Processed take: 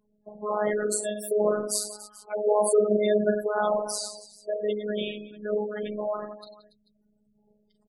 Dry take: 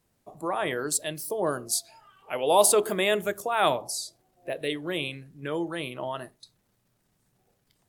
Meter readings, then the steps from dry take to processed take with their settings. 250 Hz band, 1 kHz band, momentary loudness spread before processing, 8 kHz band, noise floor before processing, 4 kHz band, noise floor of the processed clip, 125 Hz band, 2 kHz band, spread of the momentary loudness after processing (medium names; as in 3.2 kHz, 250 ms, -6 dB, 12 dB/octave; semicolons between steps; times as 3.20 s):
+2.0 dB, -4.0 dB, 16 LU, -3.5 dB, -72 dBFS, -6.0 dB, -69 dBFS, no reading, -5.0 dB, 14 LU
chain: peak limiter -16.5 dBFS, peak gain reduction 10 dB; graphic EQ with 31 bands 100 Hz +8 dB, 200 Hz +7 dB, 500 Hz +7 dB, 2.5 kHz -6 dB; reverse bouncing-ball echo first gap 40 ms, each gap 1.4×, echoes 5; spectral gate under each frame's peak -15 dB strong; robot voice 210 Hz; trim +2 dB